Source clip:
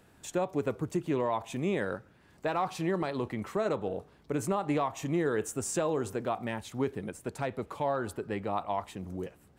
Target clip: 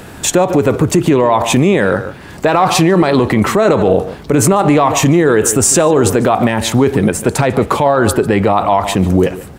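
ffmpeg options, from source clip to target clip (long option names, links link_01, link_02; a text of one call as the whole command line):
ffmpeg -i in.wav -filter_complex "[0:a]asplit=2[link_01][link_02];[link_02]adelay=145.8,volume=-18dB,highshelf=frequency=4000:gain=-3.28[link_03];[link_01][link_03]amix=inputs=2:normalize=0,alimiter=level_in=29dB:limit=-1dB:release=50:level=0:latency=1,volume=-1dB" out.wav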